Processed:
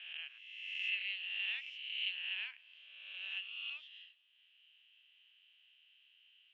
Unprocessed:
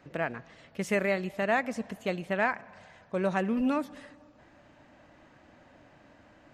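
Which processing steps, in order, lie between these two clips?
spectral swells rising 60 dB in 1.37 s; Butterworth band-pass 3000 Hz, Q 5.3; gain +6.5 dB

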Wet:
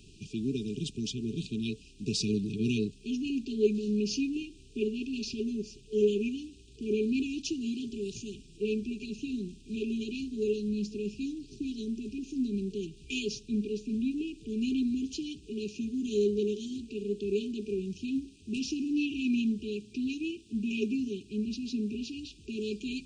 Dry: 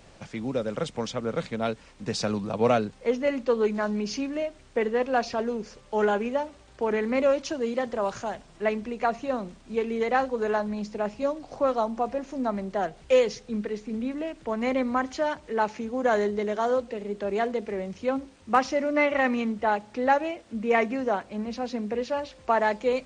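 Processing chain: FFT band-reject 440–2400 Hz

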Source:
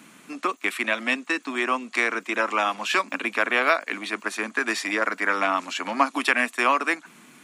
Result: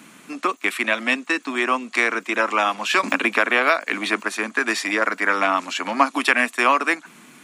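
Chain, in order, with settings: 3.03–4.23 three-band squash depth 70%; gain +3.5 dB

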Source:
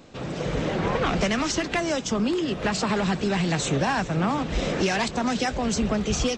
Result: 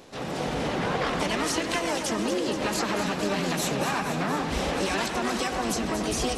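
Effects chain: low shelf 190 Hz -7.5 dB; compressor 4:1, threshold -27 dBFS, peak gain reduction 6.5 dB; harmoniser +7 st -3 dB; echo with dull and thin repeats by turns 0.118 s, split 2300 Hz, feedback 83%, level -7 dB; reverb RT60 0.25 s, pre-delay 82 ms, DRR 12.5 dB

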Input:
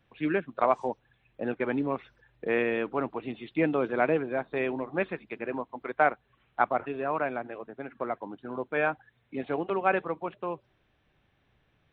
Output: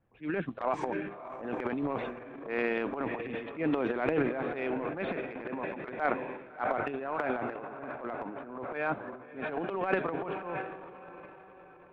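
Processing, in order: low-pass opened by the level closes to 1200 Hz, open at -21 dBFS; diffused feedback echo 0.633 s, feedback 47%, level -13 dB; transient shaper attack -10 dB, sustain +12 dB; gain -4 dB

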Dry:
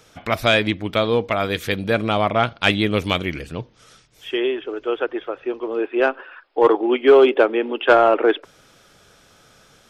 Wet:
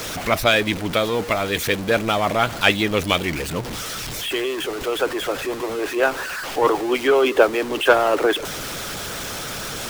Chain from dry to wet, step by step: zero-crossing step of -22 dBFS; harmonic-percussive split harmonic -8 dB; gain +1 dB

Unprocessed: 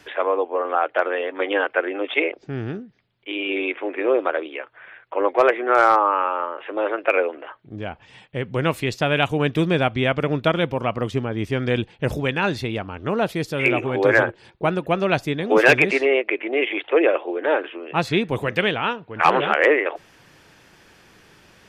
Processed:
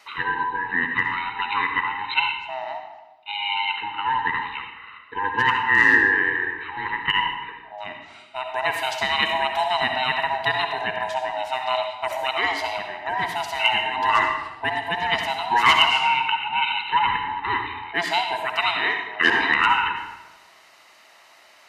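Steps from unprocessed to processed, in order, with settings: band-swap scrambler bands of 500 Hz; HPF 970 Hz 6 dB/oct; bell 2000 Hz +3.5 dB 0.35 oct; on a send: reverb RT60 1.0 s, pre-delay 55 ms, DRR 4 dB

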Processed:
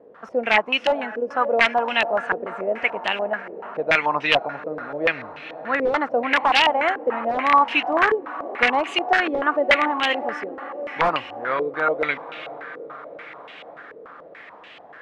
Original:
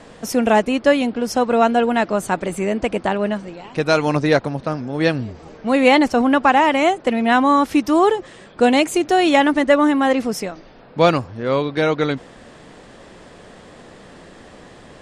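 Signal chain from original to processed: HPF 190 Hz 6 dB/oct; low shelf 340 Hz -6 dB; diffused feedback echo 0.516 s, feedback 68%, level -14.5 dB; wrapped overs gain 8 dB; tilt shelf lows -5.5 dB, about 820 Hz; stepped low-pass 6.9 Hz 450–2800 Hz; gain -5.5 dB

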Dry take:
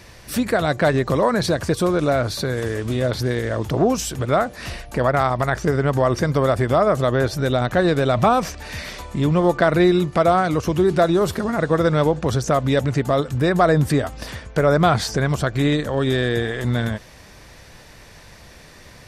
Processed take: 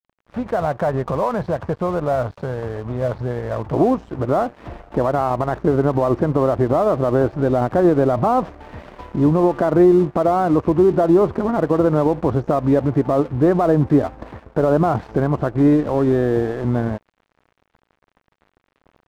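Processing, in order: synth low-pass 940 Hz, resonance Q 1.8; limiter -9.5 dBFS, peak gain reduction 7.5 dB; bell 310 Hz -6.5 dB 0.74 oct, from 3.73 s +7 dB; crossover distortion -37.5 dBFS

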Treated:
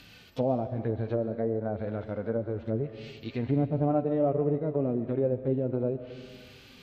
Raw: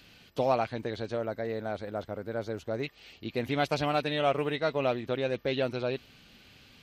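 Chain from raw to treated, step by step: phaser 1.1 Hz, delay 4.9 ms, feedback 24%; harmonic-percussive split percussive -15 dB; treble ducked by the level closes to 510 Hz, closed at -31 dBFS; on a send: reverb RT60 1.7 s, pre-delay 88 ms, DRR 11.5 dB; on the sum: gain +7 dB

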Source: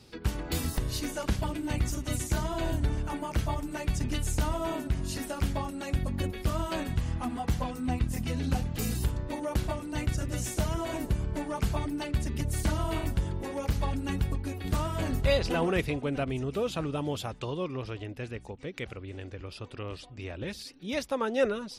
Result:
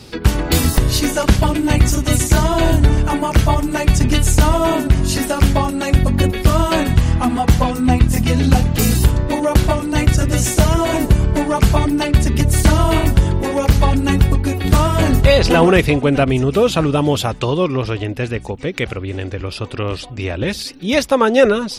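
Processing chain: maximiser +17.5 dB; gain -1 dB

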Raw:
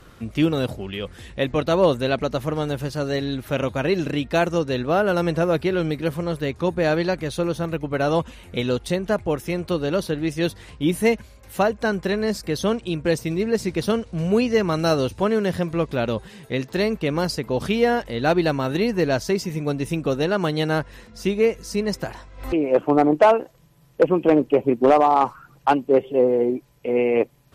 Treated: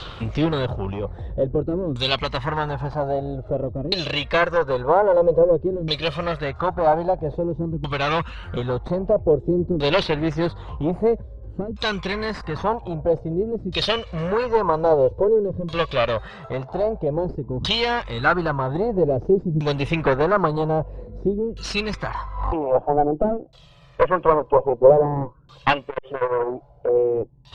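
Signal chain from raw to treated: graphic EQ 250/1000/2000/4000/8000 Hz -10/+4/-7/+10/+8 dB; in parallel at +1.5 dB: compressor, threshold -32 dBFS, peak gain reduction 20.5 dB; on the sum: phaser 0.1 Hz, delay 2.1 ms, feedback 50%; one-sided clip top -23.5 dBFS; LFO low-pass saw down 0.51 Hz 250–3600 Hz; 25.88–26.89 core saturation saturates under 910 Hz

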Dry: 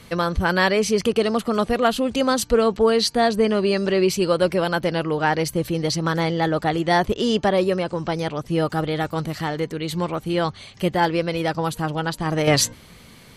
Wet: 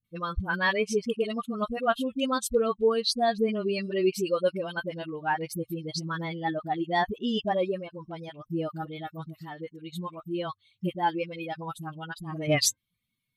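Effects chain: per-bin expansion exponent 2; low shelf 320 Hz -3.5 dB; dispersion highs, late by 45 ms, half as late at 540 Hz; gain -2 dB

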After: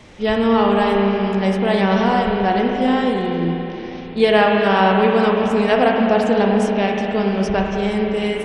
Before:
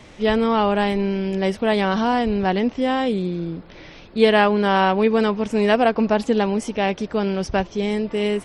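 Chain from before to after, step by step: spring tank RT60 3.5 s, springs 35/47 ms, chirp 60 ms, DRR 0 dB

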